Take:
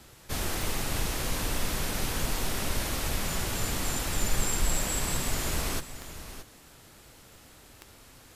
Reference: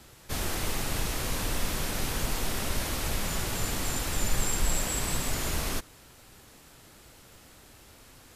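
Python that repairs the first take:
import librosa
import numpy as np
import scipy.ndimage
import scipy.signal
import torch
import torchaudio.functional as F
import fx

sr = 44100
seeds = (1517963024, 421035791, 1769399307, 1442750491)

y = fx.fix_declick_ar(x, sr, threshold=10.0)
y = fx.fix_echo_inverse(y, sr, delay_ms=624, level_db=-12.5)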